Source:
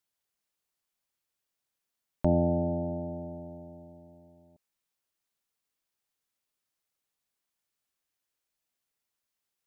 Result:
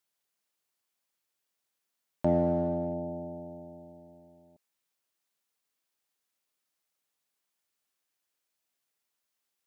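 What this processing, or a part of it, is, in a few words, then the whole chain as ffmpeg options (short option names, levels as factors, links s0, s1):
parallel distortion: -filter_complex "[0:a]highpass=f=190:p=1,asplit=2[s0][s1];[s1]asoftclip=type=hard:threshold=0.0355,volume=0.266[s2];[s0][s2]amix=inputs=2:normalize=0"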